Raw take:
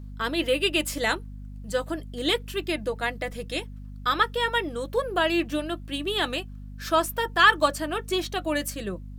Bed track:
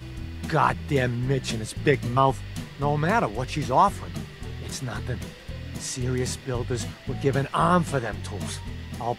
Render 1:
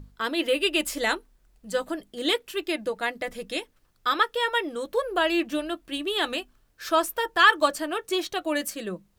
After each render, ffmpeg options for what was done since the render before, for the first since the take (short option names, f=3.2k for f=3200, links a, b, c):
-af "bandreject=f=50:t=h:w=6,bandreject=f=100:t=h:w=6,bandreject=f=150:t=h:w=6,bandreject=f=200:t=h:w=6,bandreject=f=250:t=h:w=6"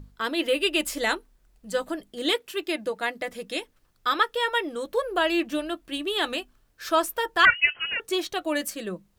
-filter_complex "[0:a]asettb=1/sr,asplit=3[a][b][c];[a]atrim=end=2.324[d];[b]atrim=start=2.32:end=3.6,asetpts=PTS-STARTPTS,afade=t=in:d=0.004:c=qsin,afade=t=out:st=1.276:d=0.004:c=qsin,highpass=f=100:p=1[e];[c]atrim=start=3.596[f];[d][e]acrossfade=d=0.004:c1=hsin:c2=qsin[g];[g][f]acrossfade=d=0.004:c1=qsin:c2=hsin,asettb=1/sr,asplit=3[h][i][j];[h]atrim=end=7.454[k];[i]atrim=start=7.45:end=8,asetpts=PTS-STARTPTS,afade=t=in:d=0.004:c=qsin,afade=t=out:st=0.546:d=0.004:c=qsin,lowpass=f=2.7k:t=q:w=0.5098,lowpass=f=2.7k:t=q:w=0.6013,lowpass=f=2.7k:t=q:w=0.9,lowpass=f=2.7k:t=q:w=2.563,afreqshift=-3200[l];[j]atrim=start=7.996[m];[k][l]acrossfade=d=0.004:c1=hsin:c2=qsin[n];[n][m]acrossfade=d=0.004:c1=qsin:c2=hsin"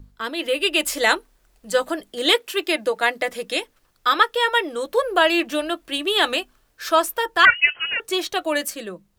-filter_complex "[0:a]acrossover=split=340[a][b];[a]alimiter=level_in=11dB:limit=-24dB:level=0:latency=1,volume=-11dB[c];[b]dynaudnorm=f=130:g=11:m=9dB[d];[c][d]amix=inputs=2:normalize=0"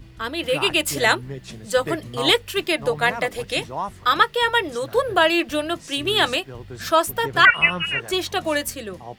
-filter_complex "[1:a]volume=-9dB[a];[0:a][a]amix=inputs=2:normalize=0"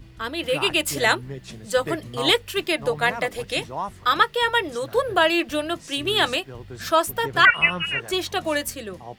-af "volume=-1.5dB"